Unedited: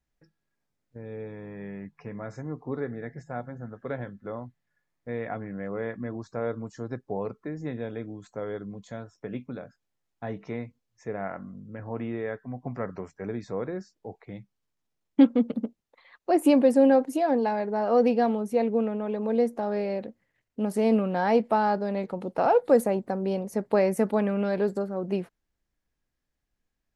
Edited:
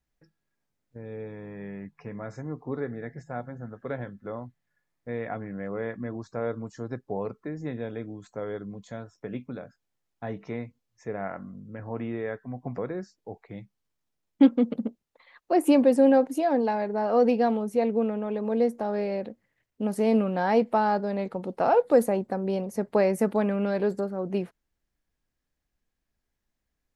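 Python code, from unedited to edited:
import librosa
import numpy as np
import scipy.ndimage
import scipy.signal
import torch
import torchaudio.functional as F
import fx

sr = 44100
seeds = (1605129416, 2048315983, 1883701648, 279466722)

y = fx.edit(x, sr, fx.cut(start_s=12.78, length_s=0.78), tone=tone)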